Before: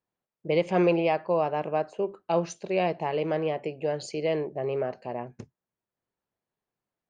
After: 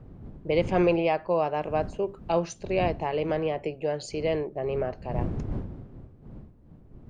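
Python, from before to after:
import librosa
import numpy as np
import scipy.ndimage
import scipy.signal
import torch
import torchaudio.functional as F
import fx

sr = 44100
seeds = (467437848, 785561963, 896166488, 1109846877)

y = fx.dmg_wind(x, sr, seeds[0], corner_hz=170.0, level_db=-38.0)
y = fx.high_shelf(y, sr, hz=5100.0, db=5.5, at=(1.31, 2.48))
y = fx.band_squash(y, sr, depth_pct=40, at=(3.29, 3.75))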